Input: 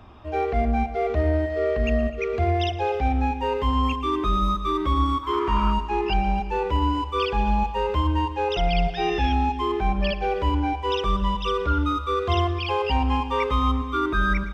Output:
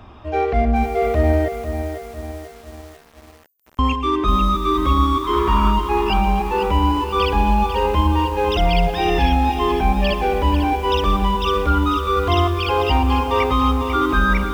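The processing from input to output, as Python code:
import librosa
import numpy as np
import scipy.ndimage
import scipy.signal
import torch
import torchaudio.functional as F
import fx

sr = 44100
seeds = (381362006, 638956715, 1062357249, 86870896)

y = fx.cheby2_highpass(x, sr, hz=2900.0, order=4, stop_db=80, at=(1.48, 3.79))
y = fx.echo_crushed(y, sr, ms=496, feedback_pct=55, bits=7, wet_db=-8.5)
y = F.gain(torch.from_numpy(y), 5.0).numpy()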